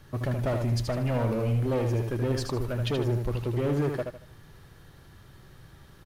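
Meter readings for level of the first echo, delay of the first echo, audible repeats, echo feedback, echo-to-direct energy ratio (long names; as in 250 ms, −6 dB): −5.5 dB, 77 ms, 3, 30%, −5.0 dB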